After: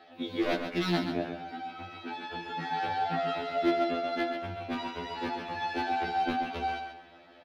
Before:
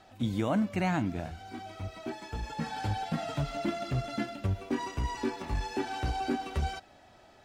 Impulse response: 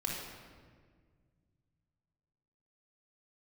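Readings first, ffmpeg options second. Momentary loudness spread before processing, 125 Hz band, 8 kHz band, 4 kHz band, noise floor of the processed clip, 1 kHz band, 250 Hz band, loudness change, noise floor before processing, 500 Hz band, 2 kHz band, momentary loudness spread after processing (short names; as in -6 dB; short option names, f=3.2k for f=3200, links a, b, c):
11 LU, -9.0 dB, n/a, +4.0 dB, -55 dBFS, +5.0 dB, -0.5 dB, +1.5 dB, -57 dBFS, +4.0 dB, +4.0 dB, 11 LU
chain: -filter_complex "[0:a]acrossover=split=260 3200:gain=0.0631 1 0.178[a][b][c];[a][b][c]amix=inputs=3:normalize=0,asplit=2[d][e];[1:a]atrim=start_sample=2205,adelay=49[f];[e][f]afir=irnorm=-1:irlink=0,volume=-24.5dB[g];[d][g]amix=inputs=2:normalize=0,aeval=exprs='0.0422*(abs(mod(val(0)/0.0422+3,4)-2)-1)':c=same,firequalizer=gain_entry='entry(330,0);entry(850,-6);entry(4000,4);entry(7600,-11);entry(11000,-4)':delay=0.05:min_phase=1,aecho=1:1:133|266|399:0.422|0.11|0.0285,afftfilt=real='re*2*eq(mod(b,4),0)':imag='im*2*eq(mod(b,4),0)':win_size=2048:overlap=0.75,volume=9dB"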